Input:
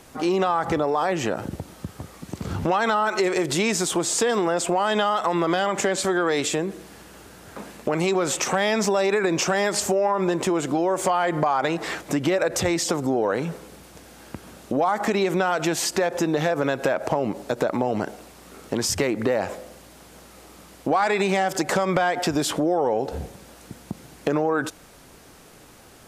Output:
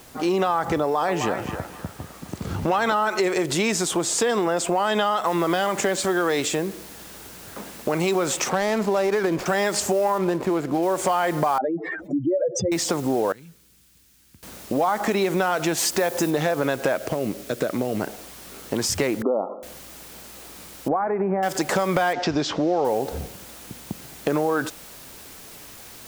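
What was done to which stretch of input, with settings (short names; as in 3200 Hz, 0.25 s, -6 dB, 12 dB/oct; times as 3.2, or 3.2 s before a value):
0.82–2.93 narrowing echo 0.26 s, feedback 42%, band-pass 1300 Hz, level -4.5 dB
5.26 noise floor step -52 dB -44 dB
8.49–9.46 median filter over 15 samples
10.18–10.83 median filter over 15 samples
11.58–12.72 spectral contrast raised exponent 3.3
13.32–14.43 passive tone stack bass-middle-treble 6-0-2
15.77–16.29 high shelf 11000 Hz -> 6100 Hz +9 dB
16.96–18.01 bell 880 Hz -12.5 dB 0.54 oct
19.22–19.63 brick-wall FIR band-pass 190–1400 Hz
20.88–21.43 Gaussian blur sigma 6.6 samples
22.13–22.85 steep low-pass 6100 Hz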